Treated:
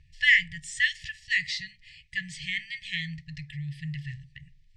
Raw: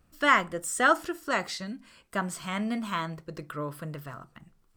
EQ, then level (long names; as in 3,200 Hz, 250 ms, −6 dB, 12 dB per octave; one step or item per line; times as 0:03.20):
linear-phase brick-wall band-stop 160–1,700 Hz
low-pass filter 5,700 Hz 12 dB per octave
high-frequency loss of the air 80 metres
+8.5 dB